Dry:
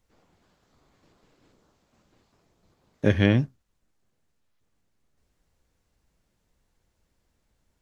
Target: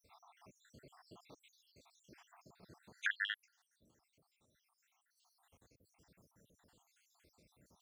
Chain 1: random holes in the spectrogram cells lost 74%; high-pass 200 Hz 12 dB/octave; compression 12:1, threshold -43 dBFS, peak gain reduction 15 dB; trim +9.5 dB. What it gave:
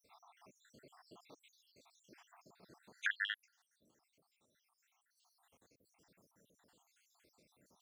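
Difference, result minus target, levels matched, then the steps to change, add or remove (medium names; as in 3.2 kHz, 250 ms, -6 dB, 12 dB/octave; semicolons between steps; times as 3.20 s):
125 Hz band -6.5 dB
change: high-pass 96 Hz 12 dB/octave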